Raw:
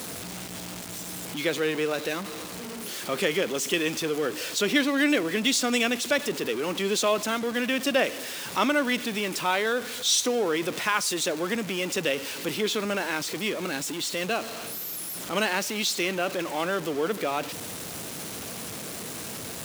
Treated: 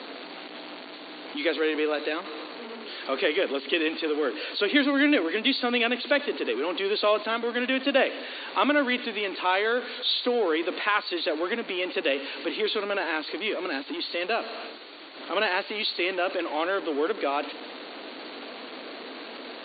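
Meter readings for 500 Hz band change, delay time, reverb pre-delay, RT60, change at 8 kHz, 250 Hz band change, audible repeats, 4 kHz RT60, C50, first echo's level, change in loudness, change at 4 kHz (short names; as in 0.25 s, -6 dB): +1.0 dB, none, none, none, under -40 dB, -0.5 dB, none, none, none, none, +0.5 dB, 0.0 dB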